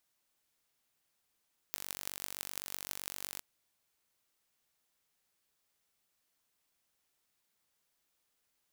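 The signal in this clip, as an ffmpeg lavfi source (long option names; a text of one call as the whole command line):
ffmpeg -f lavfi -i "aevalsrc='0.355*eq(mod(n,923),0)*(0.5+0.5*eq(mod(n,7384),0))':duration=1.66:sample_rate=44100" out.wav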